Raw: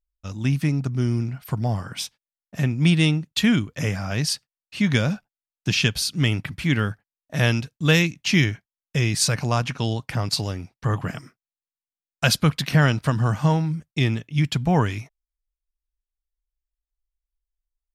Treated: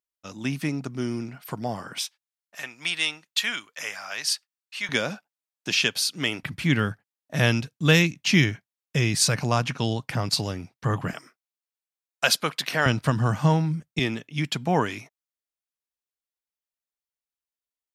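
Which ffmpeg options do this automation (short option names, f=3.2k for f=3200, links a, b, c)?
-af "asetnsamples=n=441:p=0,asendcmd='1.98 highpass f 990;4.89 highpass f 340;6.43 highpass f 110;11.13 highpass f 430;12.86 highpass f 110;13.99 highpass f 230',highpass=250"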